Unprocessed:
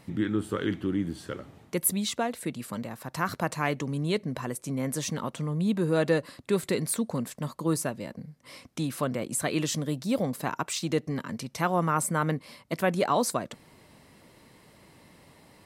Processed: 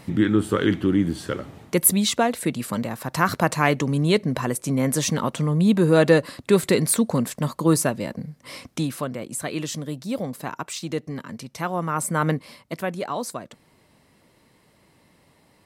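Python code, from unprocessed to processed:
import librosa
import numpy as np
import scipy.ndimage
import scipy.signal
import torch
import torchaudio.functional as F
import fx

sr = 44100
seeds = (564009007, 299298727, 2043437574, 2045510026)

y = fx.gain(x, sr, db=fx.line((8.68, 8.5), (9.09, -0.5), (11.86, -0.5), (12.29, 6.0), (12.99, -3.5)))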